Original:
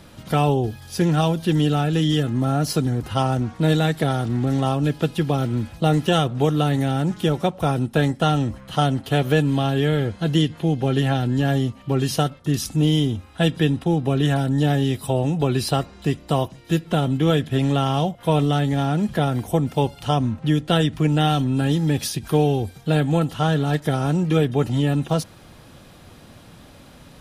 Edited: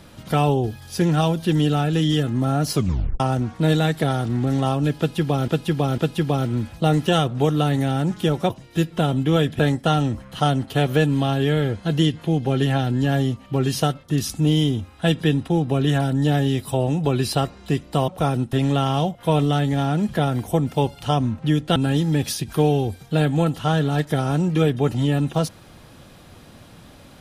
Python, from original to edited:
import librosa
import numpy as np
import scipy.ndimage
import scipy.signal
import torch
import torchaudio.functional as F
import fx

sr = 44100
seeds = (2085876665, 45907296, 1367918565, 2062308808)

y = fx.edit(x, sr, fx.tape_stop(start_s=2.74, length_s=0.46),
    fx.repeat(start_s=4.98, length_s=0.5, count=3),
    fx.swap(start_s=7.5, length_s=0.45, other_s=16.44, other_length_s=1.09),
    fx.cut(start_s=20.76, length_s=0.75), tone=tone)